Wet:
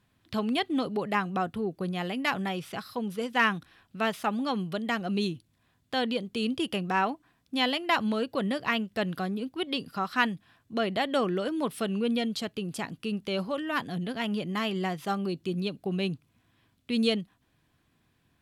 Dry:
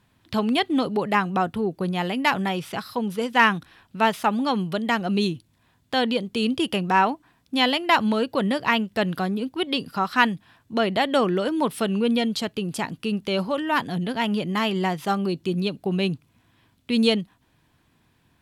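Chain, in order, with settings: notch 910 Hz, Q 10; gain -6 dB

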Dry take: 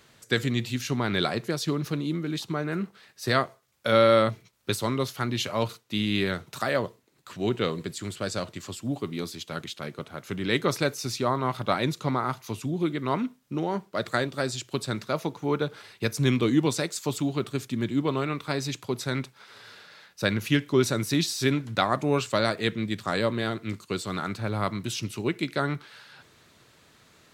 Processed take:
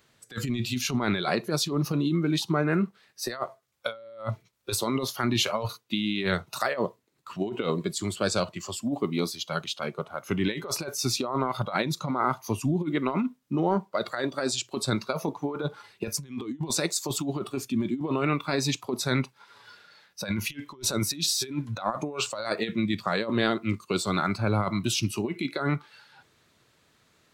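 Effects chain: negative-ratio compressor -28 dBFS, ratio -0.5; spectral noise reduction 12 dB; gain +2.5 dB

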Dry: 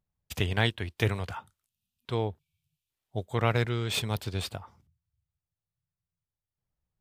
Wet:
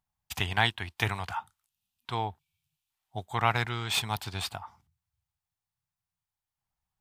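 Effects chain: resonant low shelf 650 Hz -6.5 dB, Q 3; gain +2 dB

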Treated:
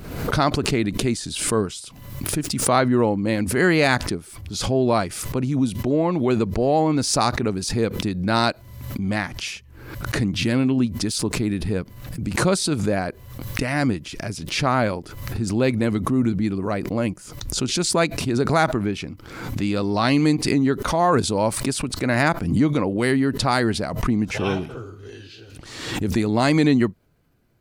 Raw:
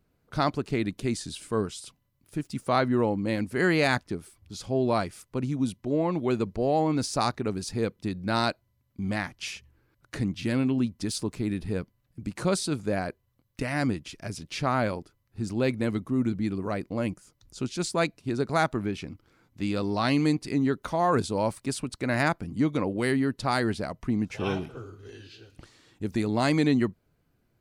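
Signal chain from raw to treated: backwards sustainer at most 53 dB/s; gain +5.5 dB

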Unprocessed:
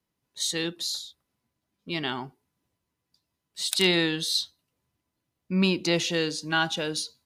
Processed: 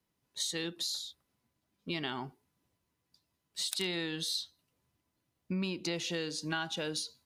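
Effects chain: compressor 5:1, threshold -33 dBFS, peak gain reduction 14 dB

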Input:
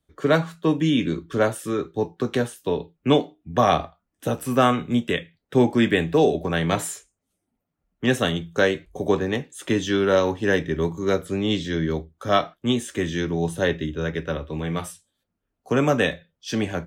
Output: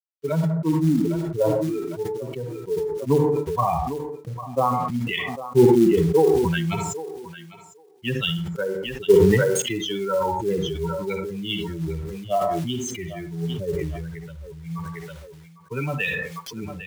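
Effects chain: per-bin expansion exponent 3; treble ducked by the level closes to 720 Hz, closed at -21 dBFS; ripple EQ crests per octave 0.73, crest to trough 9 dB; in parallel at -3 dB: compressor 20:1, threshold -35 dBFS, peak gain reduction 22.5 dB; on the sum: LFO low-pass sine 0.64 Hz 390–3700 Hz; companded quantiser 6-bit; thinning echo 0.803 s, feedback 16%, high-pass 400 Hz, level -16 dB; on a send at -13.5 dB: reverb RT60 0.35 s, pre-delay 42 ms; on the sum: sustainer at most 25 dB/s

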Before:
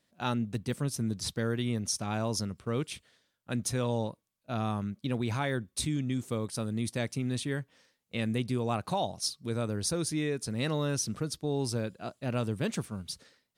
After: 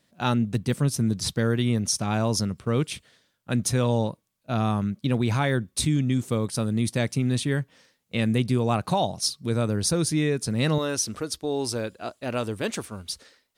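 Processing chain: bell 150 Hz +3 dB 1 oct, from 10.78 s -12.5 dB; gain +6.5 dB

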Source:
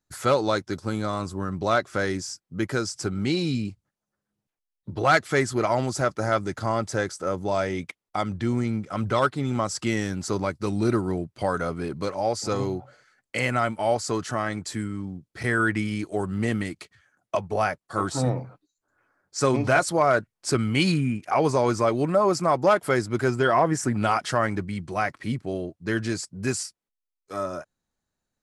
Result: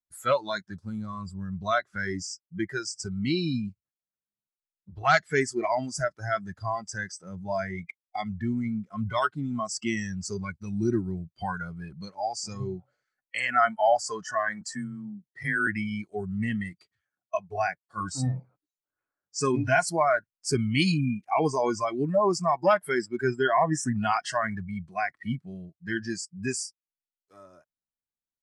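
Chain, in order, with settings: spectral noise reduction 20 dB; 14.61–15.67 frequency shift +24 Hz; 13.18–15.13 spectral gain 500–1900 Hz +6 dB; gain -1.5 dB

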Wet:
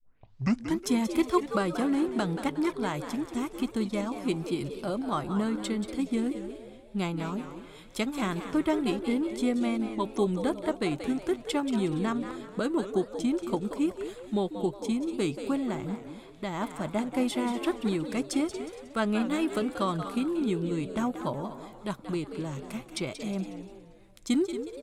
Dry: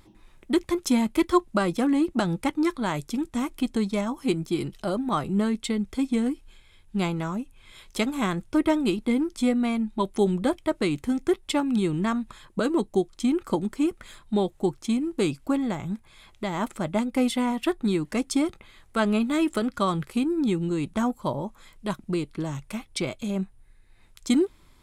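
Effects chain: tape start at the beginning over 0.79 s; vibrato 0.9 Hz 6.4 cents; on a send: frequency-shifting echo 0.182 s, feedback 37%, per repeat +99 Hz, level -10.5 dB; on the sum: warbling echo 0.236 s, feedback 34%, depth 217 cents, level -14 dB; gain -4.5 dB

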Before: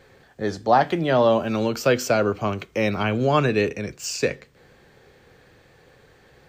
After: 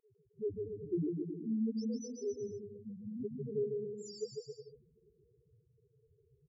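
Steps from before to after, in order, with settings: one-sided fold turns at -13 dBFS; loudest bins only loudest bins 1; brick-wall FIR band-stop 470–3600 Hz; 2.1–3.95 RIAA curve recording; bouncing-ball echo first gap 0.15 s, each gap 0.8×, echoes 5; gain -3 dB

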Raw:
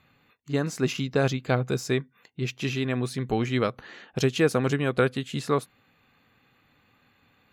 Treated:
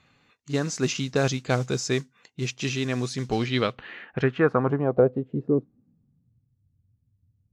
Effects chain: modulation noise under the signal 24 dB; low-pass sweep 6400 Hz -> 100 Hz, 3.19–6.51

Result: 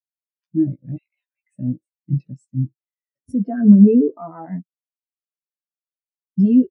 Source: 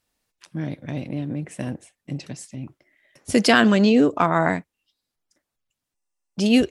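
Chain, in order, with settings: 0.96–1.55 HPF 1100 Hz 24 dB/oct; 4.55–6.4 high shelf 3800 Hz -10 dB; compressor 2.5:1, threshold -22 dBFS, peak gain reduction 8 dB; 3.32–3.89 tape spacing loss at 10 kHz 38 dB; doubler 16 ms -5 dB; maximiser +19.5 dB; spectral expander 2.5:1

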